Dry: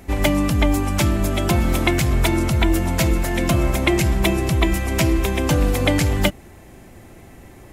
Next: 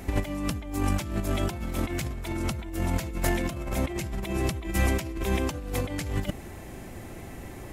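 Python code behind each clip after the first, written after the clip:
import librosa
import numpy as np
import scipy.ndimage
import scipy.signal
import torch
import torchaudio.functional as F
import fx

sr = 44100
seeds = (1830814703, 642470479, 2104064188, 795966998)

y = fx.over_compress(x, sr, threshold_db=-23.0, ratio=-0.5)
y = y * librosa.db_to_amplitude(-4.0)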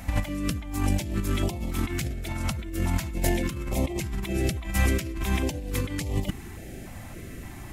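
y = fx.filter_held_notch(x, sr, hz=3.5, low_hz=390.0, high_hz=1500.0)
y = y * librosa.db_to_amplitude(2.0)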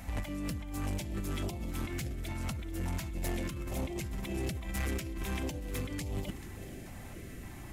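y = fx.echo_feedback(x, sr, ms=436, feedback_pct=59, wet_db=-17.5)
y = 10.0 ** (-24.0 / 20.0) * np.tanh(y / 10.0 ** (-24.0 / 20.0))
y = y * librosa.db_to_amplitude(-5.5)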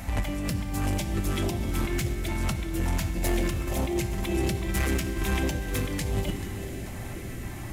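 y = fx.rev_fdn(x, sr, rt60_s=3.1, lf_ratio=1.0, hf_ratio=0.9, size_ms=52.0, drr_db=7.5)
y = y * librosa.db_to_amplitude(8.0)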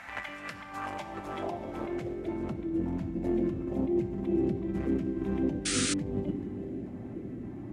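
y = fx.filter_sweep_bandpass(x, sr, from_hz=1600.0, to_hz=270.0, start_s=0.4, end_s=2.85, q=1.8)
y = fx.spec_paint(y, sr, seeds[0], shape='noise', start_s=5.65, length_s=0.29, low_hz=1200.0, high_hz=9800.0, level_db=-35.0)
y = y * librosa.db_to_amplitude(4.0)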